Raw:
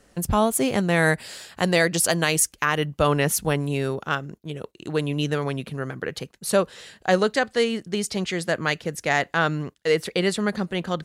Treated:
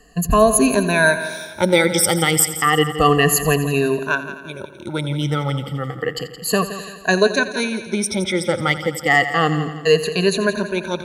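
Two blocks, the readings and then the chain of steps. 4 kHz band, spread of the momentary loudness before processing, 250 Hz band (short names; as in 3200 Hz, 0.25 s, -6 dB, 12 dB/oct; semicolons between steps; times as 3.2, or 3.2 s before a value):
+5.5 dB, 11 LU, +5.0 dB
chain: moving spectral ripple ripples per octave 1.5, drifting -0.31 Hz, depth 23 dB; multi-head echo 85 ms, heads first and second, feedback 52%, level -15 dB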